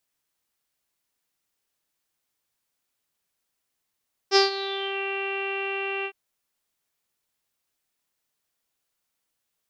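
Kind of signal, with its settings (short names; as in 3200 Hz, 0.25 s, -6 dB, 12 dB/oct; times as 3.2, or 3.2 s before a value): synth note saw G4 24 dB/oct, low-pass 2700 Hz, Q 8, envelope 1 oct, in 0.69 s, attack 49 ms, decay 0.14 s, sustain -15 dB, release 0.07 s, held 1.74 s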